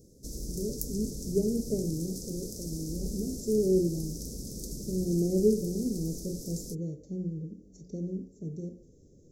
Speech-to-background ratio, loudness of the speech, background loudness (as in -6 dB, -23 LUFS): 7.5 dB, -32.5 LUFS, -40.0 LUFS